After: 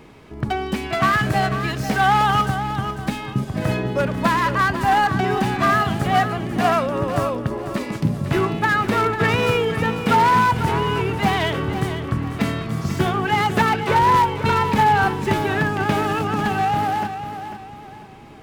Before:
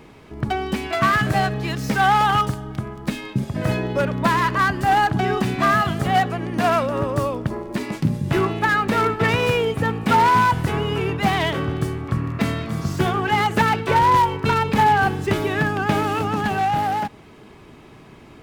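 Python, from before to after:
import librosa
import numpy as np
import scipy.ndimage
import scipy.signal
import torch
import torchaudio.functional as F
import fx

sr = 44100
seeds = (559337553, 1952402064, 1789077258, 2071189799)

y = fx.echo_feedback(x, sr, ms=496, feedback_pct=35, wet_db=-10.0)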